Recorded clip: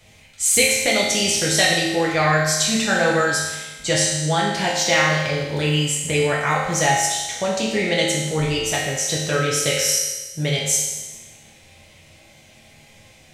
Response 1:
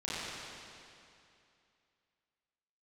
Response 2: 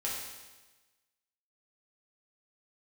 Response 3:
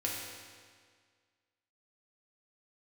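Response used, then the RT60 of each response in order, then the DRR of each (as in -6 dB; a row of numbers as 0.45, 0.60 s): 2; 2.6, 1.2, 1.8 s; -11.0, -5.5, -4.0 dB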